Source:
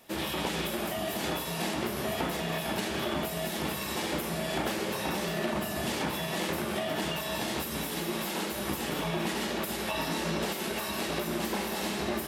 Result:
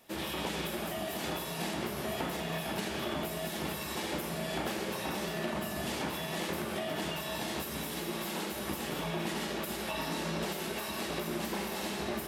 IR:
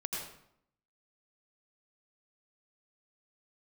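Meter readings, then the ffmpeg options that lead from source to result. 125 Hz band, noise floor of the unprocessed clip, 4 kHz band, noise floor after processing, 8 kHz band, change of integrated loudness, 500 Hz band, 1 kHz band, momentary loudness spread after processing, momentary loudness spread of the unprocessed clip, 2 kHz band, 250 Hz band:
-3.0 dB, -35 dBFS, -3.5 dB, -39 dBFS, -4.0 dB, -3.5 dB, -3.5 dB, -3.5 dB, 1 LU, 1 LU, -3.5 dB, -3.5 dB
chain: -filter_complex "[0:a]asplit=2[s0][s1];[1:a]atrim=start_sample=2205[s2];[s1][s2]afir=irnorm=-1:irlink=0,volume=0.335[s3];[s0][s3]amix=inputs=2:normalize=0,volume=0.501"

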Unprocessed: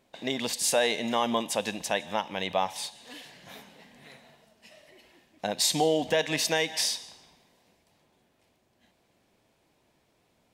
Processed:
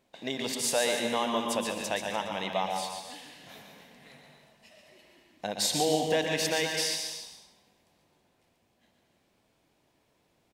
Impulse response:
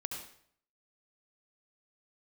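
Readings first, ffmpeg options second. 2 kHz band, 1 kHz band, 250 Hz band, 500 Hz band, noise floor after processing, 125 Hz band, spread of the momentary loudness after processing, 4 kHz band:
-1.5 dB, -1.5 dB, -1.5 dB, -1.5 dB, -71 dBFS, -0.5 dB, 18 LU, -1.5 dB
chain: -filter_complex "[0:a]aecho=1:1:140|294:0.422|0.211,asplit=2[s0][s1];[1:a]atrim=start_sample=2205,adelay=120[s2];[s1][s2]afir=irnorm=-1:irlink=0,volume=0.501[s3];[s0][s3]amix=inputs=2:normalize=0,volume=0.668"

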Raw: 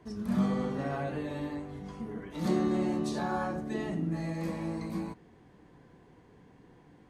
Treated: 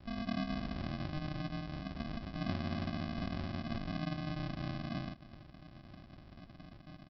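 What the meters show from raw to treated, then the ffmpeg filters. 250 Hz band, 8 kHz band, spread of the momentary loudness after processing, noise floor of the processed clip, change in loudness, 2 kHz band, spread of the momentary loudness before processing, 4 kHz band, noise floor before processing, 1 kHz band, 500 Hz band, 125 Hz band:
-7.5 dB, under -10 dB, 17 LU, -56 dBFS, -6.5 dB, -3.0 dB, 11 LU, +2.0 dB, -59 dBFS, -7.5 dB, -11.5 dB, -3.0 dB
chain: -af "highpass=48,acompressor=threshold=0.00708:ratio=3,aresample=11025,acrusher=samples=24:mix=1:aa=0.000001,aresample=44100,volume=1.58"

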